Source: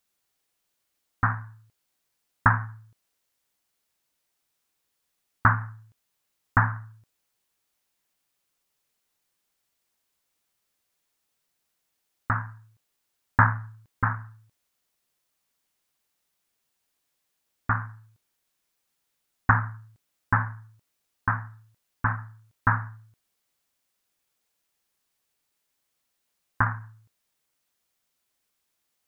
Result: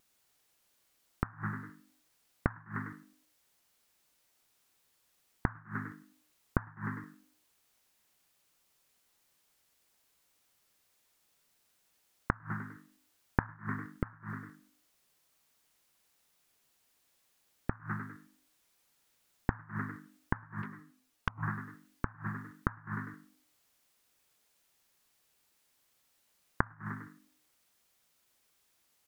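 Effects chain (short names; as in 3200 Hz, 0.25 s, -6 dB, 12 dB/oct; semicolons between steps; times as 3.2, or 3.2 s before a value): vibrato 1.3 Hz 15 cents; frequency-shifting echo 0.1 s, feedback 41%, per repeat +49 Hz, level -11 dB; 20.62–21.43 envelope flanger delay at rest 9.1 ms, full sweep at -26 dBFS; flipped gate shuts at -19 dBFS, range -31 dB; gain +4.5 dB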